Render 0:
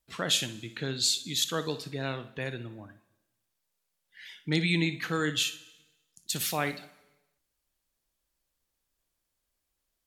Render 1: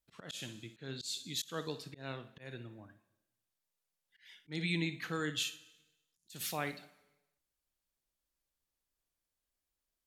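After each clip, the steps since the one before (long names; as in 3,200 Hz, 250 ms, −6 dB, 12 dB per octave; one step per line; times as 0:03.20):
volume swells 167 ms
level −7.5 dB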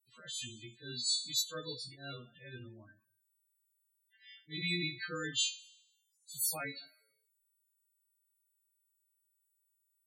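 every partial snapped to a pitch grid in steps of 2 semitones
spectral peaks only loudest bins 16
tuned comb filter 120 Hz, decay 0.15 s, harmonics all, mix 60%
level +2.5 dB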